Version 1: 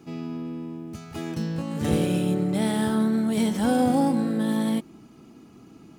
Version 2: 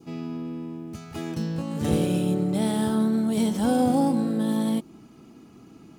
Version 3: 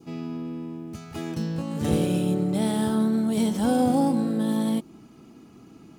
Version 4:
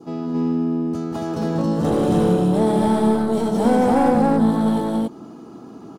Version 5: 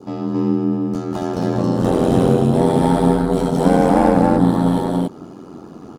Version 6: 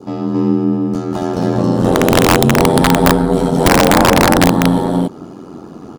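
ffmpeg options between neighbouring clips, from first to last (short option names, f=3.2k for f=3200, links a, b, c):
-af "adynamicequalizer=threshold=0.00355:dfrequency=1900:dqfactor=1.5:tfrequency=1900:tqfactor=1.5:attack=5:release=100:ratio=0.375:range=3:mode=cutabove:tftype=bell"
-af anull
-filter_complex "[0:a]equalizer=f=2.3k:t=o:w=0.94:g=-14,asplit=2[a][b];[b]highpass=f=720:p=1,volume=22dB,asoftclip=type=tanh:threshold=-9.5dB[c];[a][c]amix=inputs=2:normalize=0,lowpass=f=1.2k:p=1,volume=-6dB,aecho=1:1:189.5|274.1:0.447|0.891"
-af "aeval=exprs='val(0)*sin(2*PI*44*n/s)':c=same,volume=5.5dB"
-af "aeval=exprs='(mod(1.88*val(0)+1,2)-1)/1.88':c=same,volume=4dB"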